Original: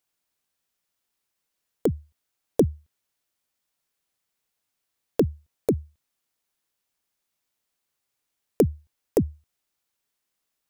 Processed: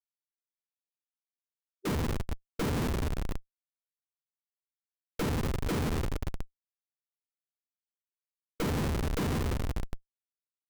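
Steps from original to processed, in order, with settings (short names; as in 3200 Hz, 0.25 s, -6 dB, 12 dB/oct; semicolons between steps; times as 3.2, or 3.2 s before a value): two-slope reverb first 0.48 s, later 3.9 s, from -16 dB, DRR -8 dB; Schmitt trigger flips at -24 dBFS; formant shift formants -3 st; gain -6 dB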